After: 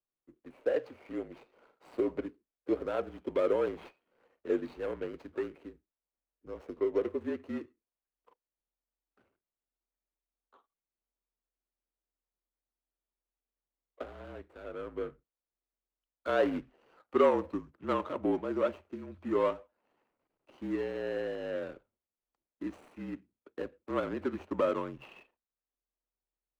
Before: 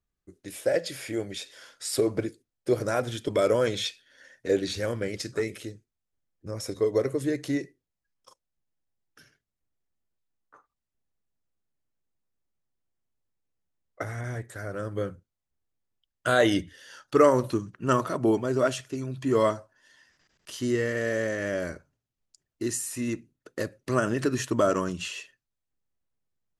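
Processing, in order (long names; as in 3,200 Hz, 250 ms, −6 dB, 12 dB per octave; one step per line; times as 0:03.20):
running median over 25 samples
three-way crossover with the lows and the highs turned down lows −16 dB, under 310 Hz, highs −16 dB, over 3,100 Hz
frequency shifter −43 Hz
level −3.5 dB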